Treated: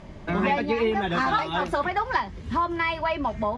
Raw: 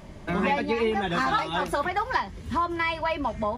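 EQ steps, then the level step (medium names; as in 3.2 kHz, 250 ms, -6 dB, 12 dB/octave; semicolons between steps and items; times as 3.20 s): distance through air 70 m; +1.5 dB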